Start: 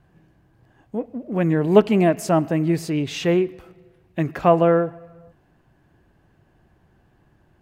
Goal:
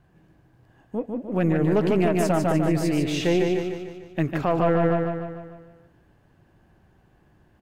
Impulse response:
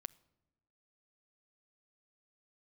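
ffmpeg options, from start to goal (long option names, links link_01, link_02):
-af "aeval=exprs='0.891*(cos(1*acos(clip(val(0)/0.891,-1,1)))-cos(1*PI/2))+0.0708*(cos(6*acos(clip(val(0)/0.891,-1,1)))-cos(6*PI/2))+0.00708*(cos(8*acos(clip(val(0)/0.891,-1,1)))-cos(8*PI/2))':channel_layout=same,aecho=1:1:149|298|447|596|745|894|1043:0.596|0.31|0.161|0.0838|0.0436|0.0226|0.0118,alimiter=limit=-10.5dB:level=0:latency=1:release=43,volume=-1.5dB"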